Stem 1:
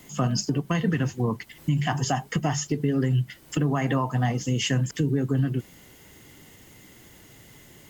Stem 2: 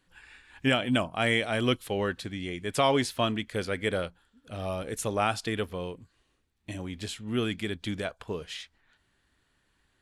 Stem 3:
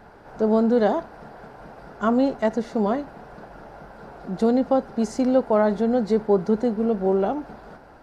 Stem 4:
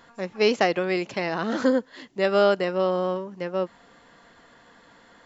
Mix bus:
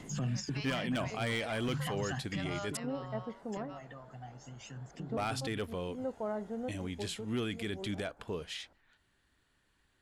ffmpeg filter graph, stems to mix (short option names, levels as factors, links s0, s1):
-filter_complex "[0:a]lowpass=f=10000:w=0.5412,lowpass=f=10000:w=1.3066,acompressor=threshold=0.0282:ratio=4,aphaser=in_gain=1:out_gain=1:delay=1.7:decay=0.63:speed=0.38:type=triangular,volume=0.596,afade=t=out:st=2.1:d=0.53:silence=0.223872[s0];[1:a]asoftclip=type=hard:threshold=0.0944,volume=0.75,asplit=3[s1][s2][s3];[s1]atrim=end=2.77,asetpts=PTS-STARTPTS,afade=t=out:st=2.766:d=0.004:c=hsin[s4];[s2]atrim=start=2.77:end=5.17,asetpts=PTS-STARTPTS,volume=0[s5];[s3]atrim=start=5.17,asetpts=PTS-STARTPTS,afade=t=in:d=0.004:c=hsin[s6];[s4][s5][s6]concat=n=3:v=0:a=1,asplit=2[s7][s8];[2:a]lowpass=2400,adelay=700,volume=0.133[s9];[3:a]highpass=f=740:w=0.5412,highpass=f=740:w=1.3066,adelay=150,volume=0.15[s10];[s8]apad=whole_len=384956[s11];[s9][s11]sidechaincompress=threshold=0.00447:ratio=8:attack=23:release=121[s12];[s0][s7][s12][s10]amix=inputs=4:normalize=0,alimiter=level_in=1.41:limit=0.0631:level=0:latency=1:release=14,volume=0.708"